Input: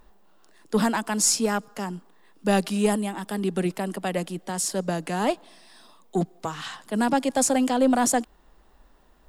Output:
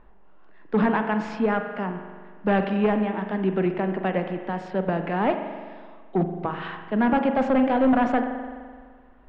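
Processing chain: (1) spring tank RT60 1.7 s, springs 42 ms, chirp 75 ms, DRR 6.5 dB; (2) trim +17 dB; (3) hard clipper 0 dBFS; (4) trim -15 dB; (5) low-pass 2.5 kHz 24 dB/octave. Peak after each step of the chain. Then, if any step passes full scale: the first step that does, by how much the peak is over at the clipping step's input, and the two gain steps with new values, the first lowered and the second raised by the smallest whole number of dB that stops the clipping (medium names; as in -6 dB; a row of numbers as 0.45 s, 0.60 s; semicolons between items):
-7.5 dBFS, +9.5 dBFS, 0.0 dBFS, -15.0 dBFS, -13.5 dBFS; step 2, 9.5 dB; step 2 +7 dB, step 4 -5 dB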